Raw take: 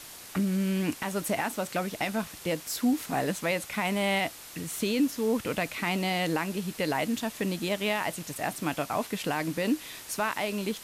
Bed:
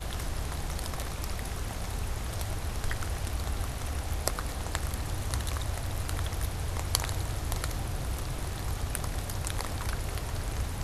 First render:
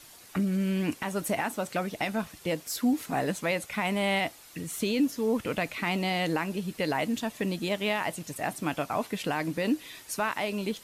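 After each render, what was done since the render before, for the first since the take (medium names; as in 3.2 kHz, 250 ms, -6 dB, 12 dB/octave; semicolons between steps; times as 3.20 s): noise reduction 8 dB, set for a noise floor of -46 dBFS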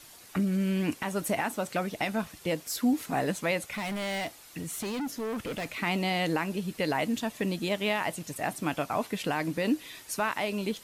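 3.62–5.81 s: overload inside the chain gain 30.5 dB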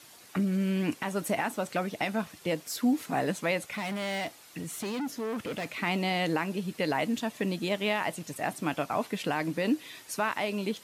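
high-pass 110 Hz 12 dB/octave; treble shelf 7.4 kHz -4 dB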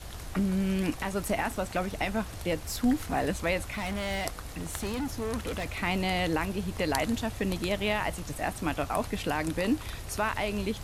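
add bed -7 dB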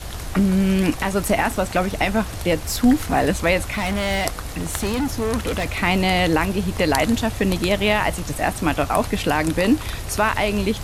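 trim +10 dB; peak limiter -3 dBFS, peak gain reduction 2.5 dB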